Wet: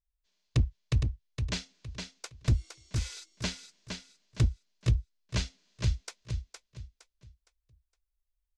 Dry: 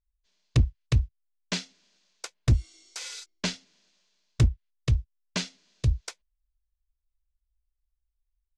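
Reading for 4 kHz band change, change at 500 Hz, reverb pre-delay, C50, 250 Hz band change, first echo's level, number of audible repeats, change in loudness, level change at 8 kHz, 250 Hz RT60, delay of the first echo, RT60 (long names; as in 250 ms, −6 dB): −3.5 dB, −3.5 dB, no reverb audible, no reverb audible, −3.5 dB, −6.0 dB, 3, −4.5 dB, −3.5 dB, no reverb audible, 463 ms, no reverb audible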